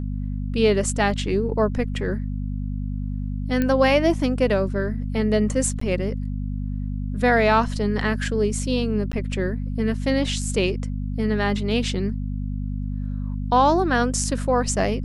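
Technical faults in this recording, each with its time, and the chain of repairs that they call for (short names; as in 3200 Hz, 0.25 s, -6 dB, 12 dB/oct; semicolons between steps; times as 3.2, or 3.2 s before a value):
hum 50 Hz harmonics 5 -27 dBFS
3.62 pop -11 dBFS
5.8–5.81 gap 14 ms
9.12–9.13 gap 10 ms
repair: de-click; de-hum 50 Hz, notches 5; interpolate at 5.8, 14 ms; interpolate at 9.12, 10 ms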